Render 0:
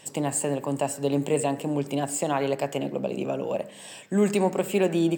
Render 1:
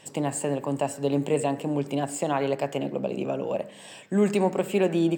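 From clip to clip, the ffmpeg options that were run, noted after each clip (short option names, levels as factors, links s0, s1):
-af "highshelf=f=6200:g=-7.5"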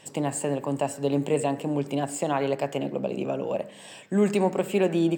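-af anull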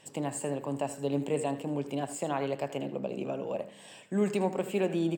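-af "aecho=1:1:79:0.211,volume=0.501"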